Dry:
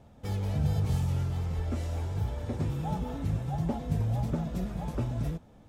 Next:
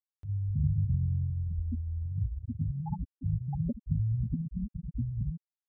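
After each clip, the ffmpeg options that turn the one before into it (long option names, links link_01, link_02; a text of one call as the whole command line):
ffmpeg -i in.wav -af "afftfilt=real='re*gte(hypot(re,im),0.178)':imag='im*gte(hypot(re,im),0.178)':win_size=1024:overlap=0.75,acompressor=mode=upward:threshold=-43dB:ratio=2.5" out.wav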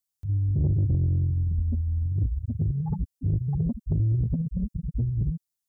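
ffmpeg -i in.wav -af "bass=frequency=250:gain=9,treble=frequency=4000:gain=13,asoftclip=type=tanh:threshold=-18dB" out.wav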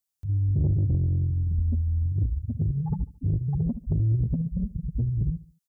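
ffmpeg -i in.wav -af "aecho=1:1:72|144|216:0.126|0.0504|0.0201" out.wav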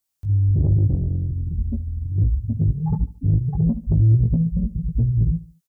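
ffmpeg -i in.wav -filter_complex "[0:a]asplit=2[link_01][link_02];[link_02]adelay=18,volume=-4.5dB[link_03];[link_01][link_03]amix=inputs=2:normalize=0,volume=4.5dB" out.wav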